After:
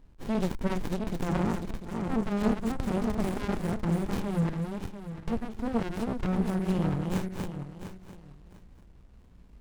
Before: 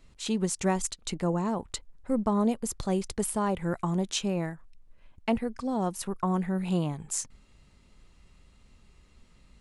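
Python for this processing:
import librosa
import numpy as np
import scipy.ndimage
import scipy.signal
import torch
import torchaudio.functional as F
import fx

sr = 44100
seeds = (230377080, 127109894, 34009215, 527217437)

y = fx.reverse_delay_fb(x, sr, ms=347, feedback_pct=46, wet_db=-3.0)
y = fx.hpss(y, sr, part='harmonic', gain_db=4)
y = fx.running_max(y, sr, window=65)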